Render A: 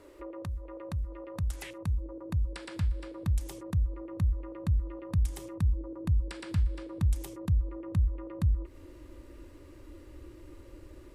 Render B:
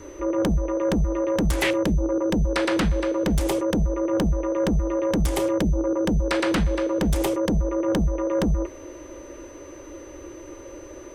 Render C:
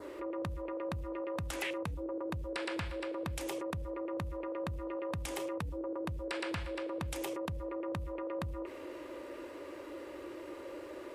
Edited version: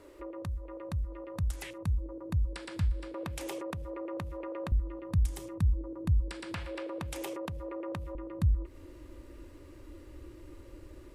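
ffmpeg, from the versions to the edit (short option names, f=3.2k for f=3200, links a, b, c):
-filter_complex "[2:a]asplit=2[a][b];[0:a]asplit=3[c][d][e];[c]atrim=end=3.142[f];[a]atrim=start=3.138:end=4.722[g];[d]atrim=start=4.718:end=6.542[h];[b]atrim=start=6.538:end=8.152[i];[e]atrim=start=8.148[j];[f][g]acrossfade=d=0.004:c1=hsin:c2=hsin[k];[k][h]acrossfade=d=0.004:c1=hsin:c2=hsin[l];[l][i]acrossfade=d=0.004:c1=hsin:c2=hsin[m];[m][j]acrossfade=d=0.004:c1=hsin:c2=hsin"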